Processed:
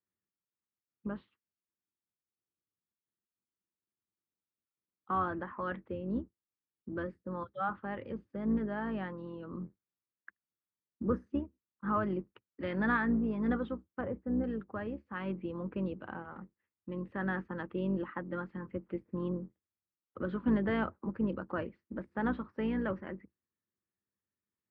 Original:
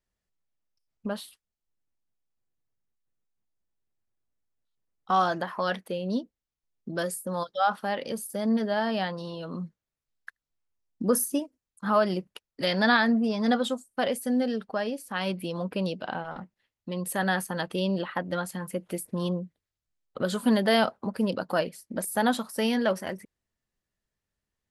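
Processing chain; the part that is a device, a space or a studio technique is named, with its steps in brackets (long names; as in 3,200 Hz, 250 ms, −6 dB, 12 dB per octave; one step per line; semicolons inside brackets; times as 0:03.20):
sub-octave bass pedal (sub-octave generator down 2 octaves, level +1 dB; loudspeaker in its box 84–2,200 Hz, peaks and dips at 140 Hz −6 dB, 200 Hz +5 dB, 340 Hz +7 dB, 690 Hz −9 dB, 1,200 Hz +4 dB)
0:14.01–0:14.44: low-pass filter 1,200 Hz 12 dB per octave
level −9 dB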